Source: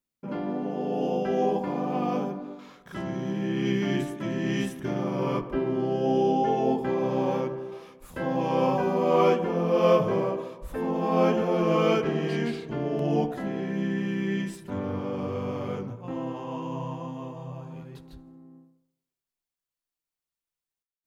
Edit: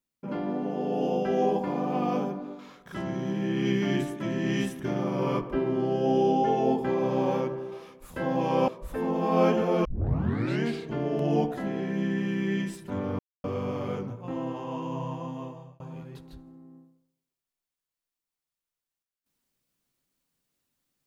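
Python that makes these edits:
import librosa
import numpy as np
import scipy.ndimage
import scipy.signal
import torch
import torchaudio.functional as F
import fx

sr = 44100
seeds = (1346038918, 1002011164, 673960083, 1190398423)

y = fx.edit(x, sr, fx.cut(start_s=8.68, length_s=1.8),
    fx.tape_start(start_s=11.65, length_s=0.78),
    fx.silence(start_s=14.99, length_s=0.25),
    fx.fade_out_span(start_s=17.22, length_s=0.38), tone=tone)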